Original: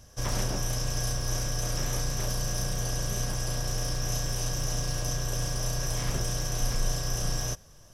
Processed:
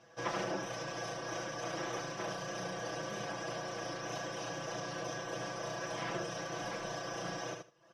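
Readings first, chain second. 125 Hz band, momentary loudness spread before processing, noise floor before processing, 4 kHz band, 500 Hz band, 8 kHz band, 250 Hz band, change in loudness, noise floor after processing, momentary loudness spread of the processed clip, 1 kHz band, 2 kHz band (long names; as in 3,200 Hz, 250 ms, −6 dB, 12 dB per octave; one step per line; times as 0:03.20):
−17.0 dB, 1 LU, −52 dBFS, −9.5 dB, −0.5 dB, −15.5 dB, −5.0 dB, −9.0 dB, −61 dBFS, 2 LU, +0.5 dB, −1.0 dB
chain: reverb reduction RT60 0.69 s
band-pass filter 300–2,600 Hz
comb filter 6 ms, depth 89%
on a send: repeating echo 78 ms, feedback 16%, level −5.5 dB
on the sum: level −1 dB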